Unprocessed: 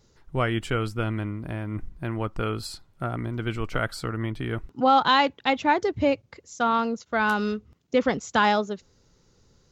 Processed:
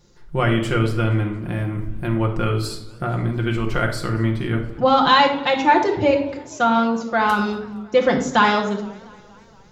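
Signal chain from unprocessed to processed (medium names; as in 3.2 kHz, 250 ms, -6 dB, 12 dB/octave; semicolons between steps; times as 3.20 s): 1.52–2.08 s: treble shelf 6.3 kHz +6.5 dB; reverberation RT60 0.70 s, pre-delay 6 ms, DRR 1 dB; modulated delay 234 ms, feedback 64%, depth 164 cents, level -24 dB; trim +3 dB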